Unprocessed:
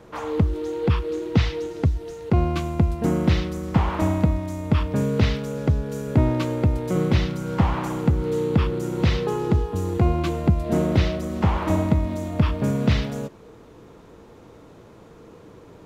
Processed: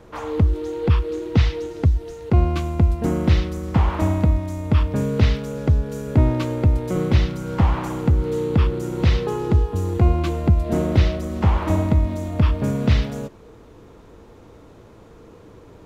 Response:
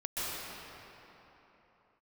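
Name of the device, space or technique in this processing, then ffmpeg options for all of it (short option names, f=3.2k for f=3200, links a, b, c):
low shelf boost with a cut just above: -af "lowshelf=f=100:g=8,equalizer=f=160:t=o:w=0.58:g=-4"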